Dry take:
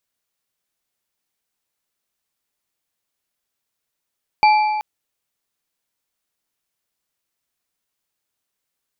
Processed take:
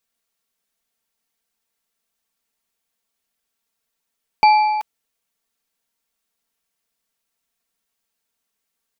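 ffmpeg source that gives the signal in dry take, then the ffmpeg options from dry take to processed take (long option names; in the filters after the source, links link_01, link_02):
-f lavfi -i "aevalsrc='0.376*pow(10,-3*t/1.75)*sin(2*PI*852*t)+0.15*pow(10,-3*t/1.291)*sin(2*PI*2349*t)+0.0596*pow(10,-3*t/1.055)*sin(2*PI*4604.2*t)':duration=0.38:sample_rate=44100"
-af "aecho=1:1:4.4:0.65"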